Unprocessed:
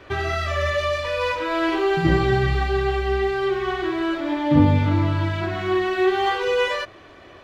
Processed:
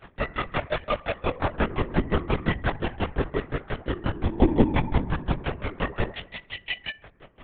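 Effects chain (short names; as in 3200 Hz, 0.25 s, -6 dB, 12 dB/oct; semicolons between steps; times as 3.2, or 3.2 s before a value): spectral repair 6.13–6.83, 230–1600 Hz after; grains 90 ms, grains 5.7/s, pitch spread up and down by 0 st; FDN reverb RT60 0.84 s, low-frequency decay 1.55×, high-frequency decay 0.35×, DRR 12 dB; LPC vocoder at 8 kHz whisper; gain +1.5 dB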